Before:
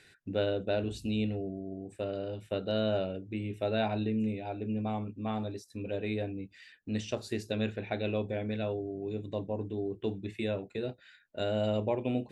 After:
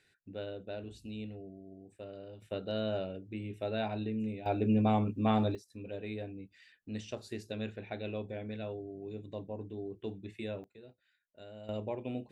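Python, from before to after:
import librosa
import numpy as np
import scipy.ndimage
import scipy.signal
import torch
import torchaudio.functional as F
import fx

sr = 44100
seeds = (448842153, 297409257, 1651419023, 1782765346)

y = fx.gain(x, sr, db=fx.steps((0.0, -11.0), (2.42, -4.5), (4.46, 6.0), (5.55, -6.5), (10.64, -18.5), (11.69, -7.0)))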